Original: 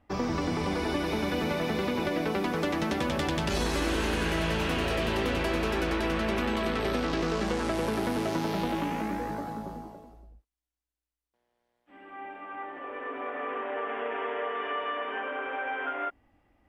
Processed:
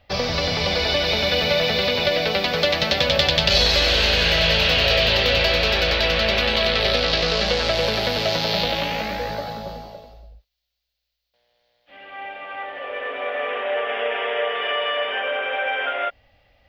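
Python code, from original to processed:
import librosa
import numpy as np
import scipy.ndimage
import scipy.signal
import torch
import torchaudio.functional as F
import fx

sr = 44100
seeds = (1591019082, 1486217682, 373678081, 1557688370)

y = fx.curve_eq(x, sr, hz=(130.0, 330.0, 550.0, 1000.0, 4400.0, 9600.0, 14000.0), db=(0, -15, 6, -6, 15, -17, 4))
y = F.gain(torch.from_numpy(y), 8.0).numpy()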